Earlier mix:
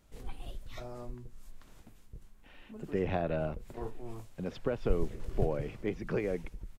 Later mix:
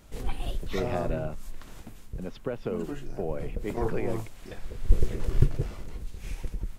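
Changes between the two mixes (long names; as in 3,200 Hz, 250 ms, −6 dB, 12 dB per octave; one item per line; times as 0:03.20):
speech: entry −2.20 s
background +11.0 dB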